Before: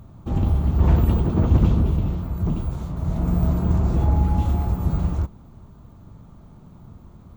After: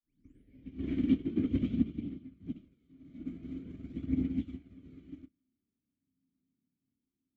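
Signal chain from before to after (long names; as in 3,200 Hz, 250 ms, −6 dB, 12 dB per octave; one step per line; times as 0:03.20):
turntable start at the beginning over 0.78 s
formant filter i
on a send: flutter between parallel walls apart 5.2 metres, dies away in 0.23 s
on the sum: spring reverb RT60 1.8 s, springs 35 ms, chirp 80 ms, DRR 12.5 dB
phase shifter 0.47 Hz, delay 3.6 ms, feedback 31%
expander for the loud parts 2.5 to 1, over −51 dBFS
level +7.5 dB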